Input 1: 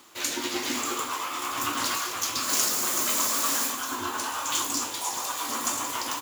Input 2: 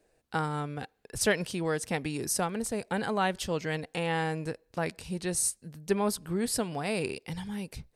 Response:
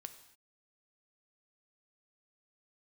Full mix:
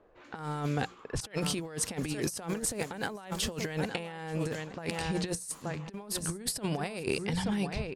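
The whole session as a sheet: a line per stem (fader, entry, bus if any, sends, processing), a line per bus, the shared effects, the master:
-18.0 dB, 0.00 s, no send, no echo send, soft clip -19.5 dBFS, distortion -18 dB; auto duck -9 dB, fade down 0.90 s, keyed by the second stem
+2.5 dB, 0.00 s, no send, echo send -14.5 dB, notches 60/120/180 Hz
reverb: off
echo: feedback echo 0.876 s, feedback 18%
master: low-pass opened by the level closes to 1300 Hz, open at -27 dBFS; negative-ratio compressor -33 dBFS, ratio -0.5

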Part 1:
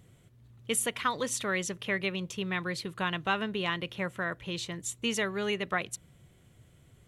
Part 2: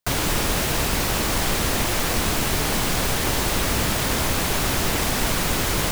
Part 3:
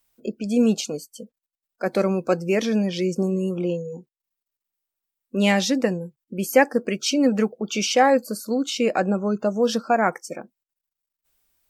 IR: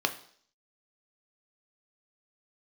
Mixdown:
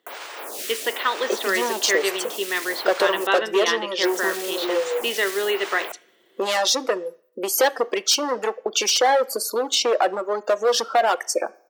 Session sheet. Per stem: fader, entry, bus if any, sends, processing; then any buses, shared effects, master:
+0.5 dB, 0.00 s, send -11.5 dB, LPF 3000 Hz 12 dB/oct; band shelf 840 Hz -9 dB
-0.5 dB, 0.00 s, muted 3.27–4.03, no send, limiter -20 dBFS, peak gain reduction 10.5 dB; photocell phaser 1.1 Hz; auto duck -9 dB, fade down 0.90 s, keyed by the first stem
+2.5 dB, 1.05 s, send -17 dB, overloaded stage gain 20 dB; compressor 5:1, threshold -30 dBFS, peak gain reduction 8 dB; reverb removal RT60 1.1 s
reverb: on, RT60 0.55 s, pre-delay 3 ms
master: HPF 390 Hz 24 dB/oct; AGC gain up to 10 dB

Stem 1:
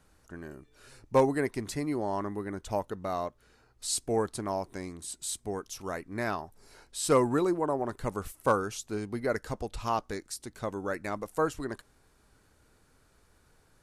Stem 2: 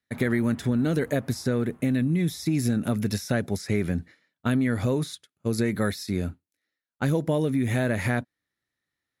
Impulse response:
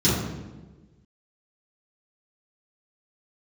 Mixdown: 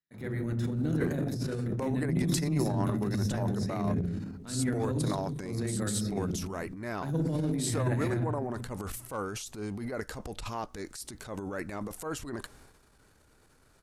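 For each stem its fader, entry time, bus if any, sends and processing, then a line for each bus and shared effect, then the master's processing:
+1.0 dB, 0.65 s, no send, compressor 6:1, threshold -32 dBFS, peak gain reduction 14 dB
-13.5 dB, 0.00 s, send -21 dB, dry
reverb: on, RT60 1.3 s, pre-delay 3 ms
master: transient shaper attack -10 dB, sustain +9 dB

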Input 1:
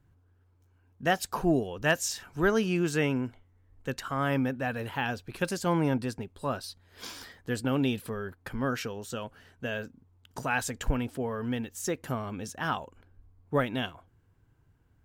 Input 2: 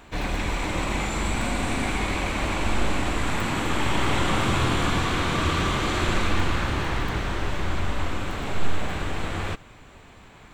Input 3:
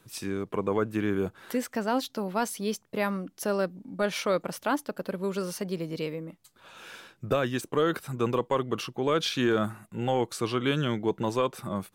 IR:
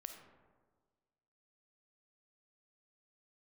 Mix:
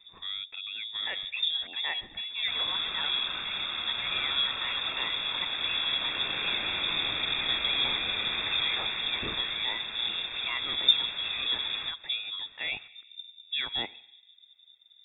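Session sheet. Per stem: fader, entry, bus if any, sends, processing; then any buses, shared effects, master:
-0.5 dB, 0.00 s, bus A, send -8.5 dB, reverb removal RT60 0.58 s
-7.0 dB, 2.35 s, no bus, no send, HPF 110 Hz 12 dB/oct
-4.5 dB, 0.00 s, bus A, send -19.5 dB, dry
bus A: 0.0 dB, limiter -24.5 dBFS, peak gain reduction 12 dB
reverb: on, RT60 1.5 s, pre-delay 10 ms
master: elliptic band-stop 290–890 Hz, stop band 40 dB; low shelf 110 Hz +9 dB; inverted band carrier 3600 Hz

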